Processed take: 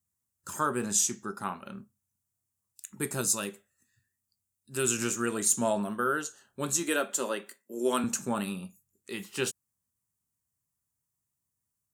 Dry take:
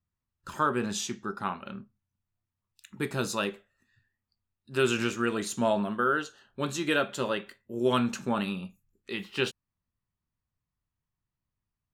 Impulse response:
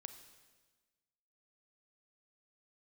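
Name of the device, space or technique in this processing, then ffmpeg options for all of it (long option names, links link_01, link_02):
budget condenser microphone: -filter_complex "[0:a]asettb=1/sr,asplit=3[link_01][link_02][link_03];[link_01]atrim=end=3.214[link_04];[link_02]atrim=start=3.21:end=5.02,asetpts=PTS-STARTPTS,afade=type=in:duration=0.004:curve=qsin,afade=type=out:start_time=1.806:duration=0.004:curve=qsin,equalizer=frequency=760:width_type=o:width=2.7:gain=-5[link_05];[link_03]atrim=start=5.016[link_06];[link_04][link_05]acrossfade=duration=0.004:curve1=hsin:curve2=qsin[link_07];[link_07][link_06]acrossfade=duration=0.004:curve1=qsin:curve2=hsin,asettb=1/sr,asplit=3[link_08][link_09][link_10];[link_08]atrim=end=6.834[link_11];[link_09]atrim=start=6.83:end=8.04,asetpts=PTS-STARTPTS,afade=type=in:duration=0.004:curve=qsin,afade=type=out:start_time=1.206:duration=0.004:curve=qsin,highpass=frequency=220:width=0.5412,highpass=frequency=220:width=1.3066[link_12];[link_10]atrim=start=8.036[link_13];[link_11][link_12]acrossfade=duration=0.004:curve1=hsin:curve2=qsin[link_14];[link_14][link_13]acrossfade=duration=0.004:curve1=qsin:curve2=hsin,highpass=79,highshelf=frequency=5400:width_type=q:width=1.5:gain=13.5,volume=-2dB"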